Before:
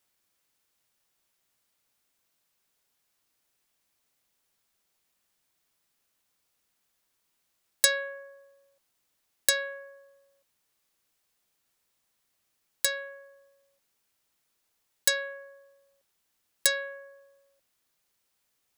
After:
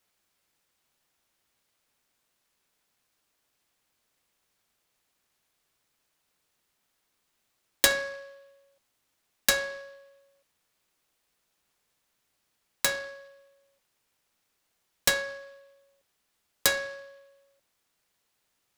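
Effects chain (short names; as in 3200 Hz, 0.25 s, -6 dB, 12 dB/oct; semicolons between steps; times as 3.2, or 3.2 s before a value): noise-modulated delay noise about 2600 Hz, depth 0.031 ms; gain +1.5 dB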